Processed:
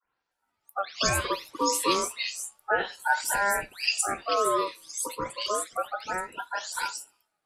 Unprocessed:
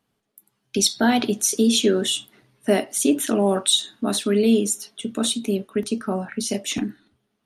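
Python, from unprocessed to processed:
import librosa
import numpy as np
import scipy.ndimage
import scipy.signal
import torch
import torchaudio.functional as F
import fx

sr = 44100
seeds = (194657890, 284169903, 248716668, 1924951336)

y = fx.spec_delay(x, sr, highs='late', ms=314)
y = fx.ring_lfo(y, sr, carrier_hz=970.0, swing_pct=25, hz=0.3)
y = F.gain(torch.from_numpy(y), -3.0).numpy()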